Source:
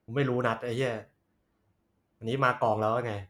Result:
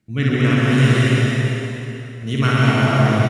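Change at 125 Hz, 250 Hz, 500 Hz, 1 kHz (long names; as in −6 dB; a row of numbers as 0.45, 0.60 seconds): +20.5, +17.0, +6.5, +6.0 decibels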